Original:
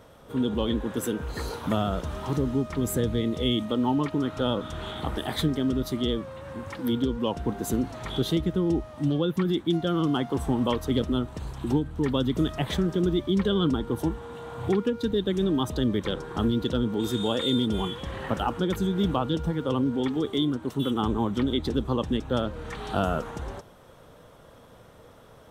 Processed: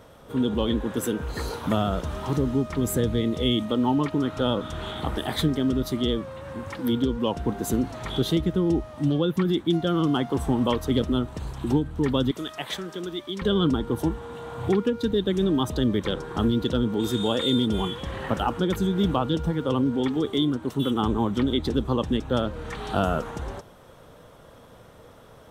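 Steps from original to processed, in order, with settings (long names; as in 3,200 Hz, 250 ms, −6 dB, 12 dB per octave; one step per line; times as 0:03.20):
0:12.31–0:13.42: high-pass filter 1,000 Hz 6 dB per octave
level +2 dB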